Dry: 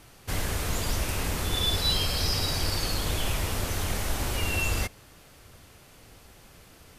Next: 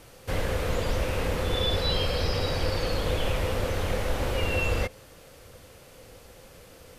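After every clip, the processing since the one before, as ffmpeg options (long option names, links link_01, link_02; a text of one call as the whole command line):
ffmpeg -i in.wav -filter_complex "[0:a]acrossover=split=3900[link_01][link_02];[link_02]acompressor=threshold=-47dB:ratio=4:attack=1:release=60[link_03];[link_01][link_03]amix=inputs=2:normalize=0,equalizer=frequency=510:width=4.8:gain=13,volume=1dB" out.wav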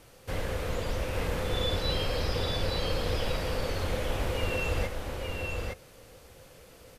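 ffmpeg -i in.wav -af "aecho=1:1:864:0.668,volume=-4.5dB" out.wav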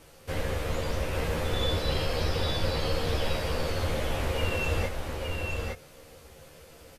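ffmpeg -i in.wav -filter_complex "[0:a]aresample=32000,aresample=44100,asplit=2[link_01][link_02];[link_02]adelay=13,volume=-3dB[link_03];[link_01][link_03]amix=inputs=2:normalize=0" out.wav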